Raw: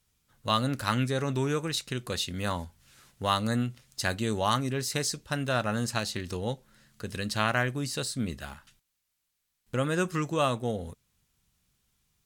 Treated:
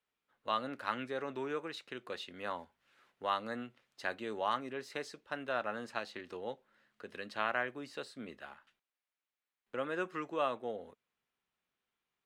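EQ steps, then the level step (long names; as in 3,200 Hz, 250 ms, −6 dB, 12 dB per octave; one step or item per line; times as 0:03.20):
three-way crossover with the lows and the highs turned down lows −24 dB, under 280 Hz, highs −20 dB, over 3,200 Hz
−6.0 dB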